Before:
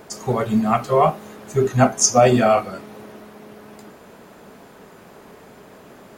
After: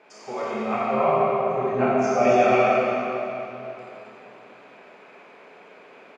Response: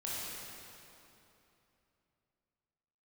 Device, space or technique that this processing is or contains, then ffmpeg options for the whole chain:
station announcement: -filter_complex "[0:a]asettb=1/sr,asplit=3[a][b][c];[a]atrim=end=0.734[d];[b]atrim=start=0.73:end=2.31,asetpts=PTS-STARTPTS,afade=t=in:d=0.004:c=qsin,afade=t=out:st=1.576:d=0.004:c=qsin,aemphasis=mode=reproduction:type=riaa[e];[c]atrim=start=2.306[f];[d][e]acrossfade=d=0.004:c1=hsin:c2=qsin[g];[g][f]acrossfade=d=0.004:c1=qsin:c2=hsin,highpass=370,lowpass=3.7k,equalizer=f=2.4k:t=o:w=0.35:g=11,aecho=1:1:204.1|268.2:0.316|0.316[h];[1:a]atrim=start_sample=2205[i];[h][i]afir=irnorm=-1:irlink=0,volume=-6dB"

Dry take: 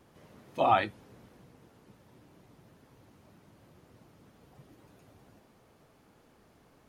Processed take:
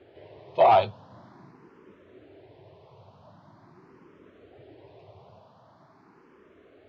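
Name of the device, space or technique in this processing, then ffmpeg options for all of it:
barber-pole phaser into a guitar amplifier: -filter_complex "[0:a]asplit=2[a][b];[b]afreqshift=0.44[c];[a][c]amix=inputs=2:normalize=1,asoftclip=type=tanh:threshold=-23.5dB,highpass=96,equalizer=f=98:t=q:w=4:g=6,equalizer=f=220:t=q:w=4:g=-4,equalizer=f=390:t=q:w=4:g=8,equalizer=f=640:t=q:w=4:g=7,equalizer=f=1k:t=q:w=4:g=6,lowpass=f=4.5k:w=0.5412,lowpass=f=4.5k:w=1.3066,asettb=1/sr,asplit=3[d][e][f];[d]atrim=end=1.074[g];[e]atrim=start=1.07:end=1.51,asetpts=PTS-STARTPTS,afade=t=in:d=0.004:c=qsin,afade=t=out:st=0.436:d=0.004:c=qsin,asplit=2[h][i];[i]adelay=35,volume=-5dB[j];[h][j]amix=inputs=2:normalize=0,atrim=end_sample=19404[k];[f]atrim=start=1.506[l];[g][k]acrossfade=d=0.004:c1=hsin:c2=qsin[m];[m][l]acrossfade=d=0.004:c1=qsin:c2=hsin,volume=6.5dB"

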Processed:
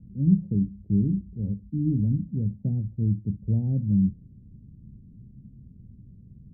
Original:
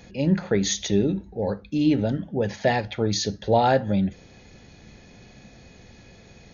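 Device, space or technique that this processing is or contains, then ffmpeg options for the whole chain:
the neighbour's flat through the wall: -af "lowpass=f=230:w=0.5412,lowpass=f=230:w=1.3066,equalizer=f=120:t=o:w=0.77:g=4,volume=1.5dB"

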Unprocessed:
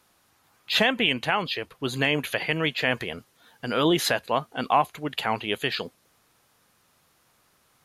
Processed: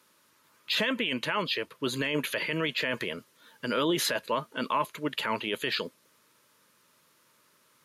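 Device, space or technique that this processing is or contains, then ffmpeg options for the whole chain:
PA system with an anti-feedback notch: -af "highpass=170,asuperstop=centerf=750:order=8:qfactor=4,alimiter=limit=-18.5dB:level=0:latency=1:release=14"

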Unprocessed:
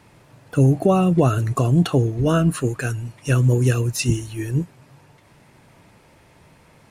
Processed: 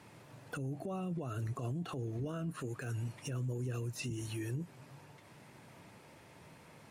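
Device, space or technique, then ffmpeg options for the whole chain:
podcast mastering chain: -af "highpass=100,deesser=0.8,acompressor=threshold=-24dB:ratio=4,alimiter=level_in=3dB:limit=-24dB:level=0:latency=1:release=90,volume=-3dB,volume=-4dB" -ar 48000 -c:a libmp3lame -b:a 96k

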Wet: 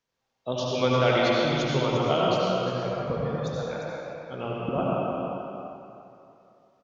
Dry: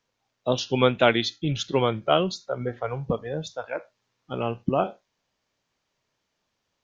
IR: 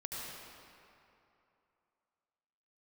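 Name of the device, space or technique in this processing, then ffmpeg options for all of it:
cave: -filter_complex "[0:a]aecho=1:1:348:0.376[a];[1:a]atrim=start_sample=2205[b];[a][b]afir=irnorm=-1:irlink=0,volume=-2dB"

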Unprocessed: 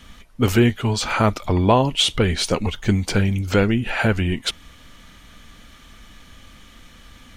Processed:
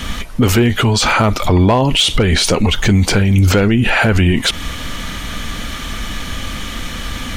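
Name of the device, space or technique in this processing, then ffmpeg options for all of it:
loud club master: -af "acompressor=threshold=-22dB:ratio=2,asoftclip=type=hard:threshold=-14.5dB,alimiter=level_in=26dB:limit=-1dB:release=50:level=0:latency=1,volume=-4.5dB"

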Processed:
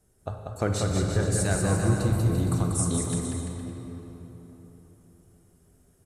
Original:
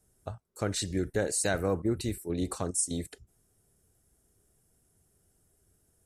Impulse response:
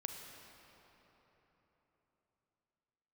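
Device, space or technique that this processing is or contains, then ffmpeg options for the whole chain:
swimming-pool hall: -filter_complex "[0:a]asettb=1/sr,asplit=3[a][b][c];[a]atrim=end=0.694[d];[b]atrim=start=0.69:end=2.86,asetpts=PTS-STARTPTS,afade=t=in:d=0.004:c=qsin,afade=t=out:st=2.166:d=0.004:c=qsin,equalizer=f=125:t=o:w=1:g=8,equalizer=f=250:t=o:w=1:g=-5,equalizer=f=500:t=o:w=1:g=-9,equalizer=f=2k:t=o:w=1:g=-6,equalizer=f=4k:t=o:w=1:g=-4[e];[c]atrim=start=2.856[f];[d][e]acrossfade=d=0.004:c1=hsin:c2=qsin[g];[g][f]acrossfade=d=0.004:c1=qsin:c2=hsin,aecho=1:1:190|342|463.6|560.9|638.7:0.631|0.398|0.251|0.158|0.1[h];[1:a]atrim=start_sample=2205[i];[h][i]afir=irnorm=-1:irlink=0,highshelf=f=4.3k:g=-6,volume=7.5dB"

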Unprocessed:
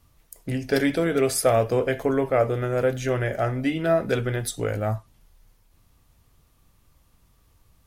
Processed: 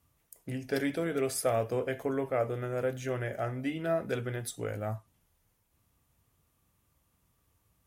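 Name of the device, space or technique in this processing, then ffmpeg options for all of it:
exciter from parts: -filter_complex "[0:a]asplit=2[a][b];[b]highpass=f=4.1k:w=0.5412,highpass=f=4.1k:w=1.3066,asoftclip=type=tanh:threshold=-36.5dB,volume=-7dB[c];[a][c]amix=inputs=2:normalize=0,highpass=68,volume=-9dB"

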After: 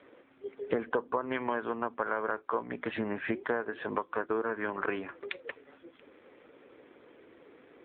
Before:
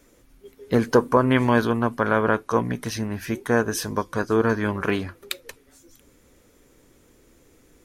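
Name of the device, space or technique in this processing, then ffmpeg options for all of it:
voicemail: -filter_complex "[0:a]asplit=3[a][b][c];[a]afade=t=out:st=2.86:d=0.02[d];[b]lowshelf=f=500:g=3,afade=t=in:st=2.86:d=0.02,afade=t=out:st=3.36:d=0.02[e];[c]afade=t=in:st=3.36:d=0.02[f];[d][e][f]amix=inputs=3:normalize=0,highpass=380,lowpass=2.8k,acompressor=threshold=-36dB:ratio=6,volume=7.5dB" -ar 8000 -c:a libopencore_amrnb -b:a 7400

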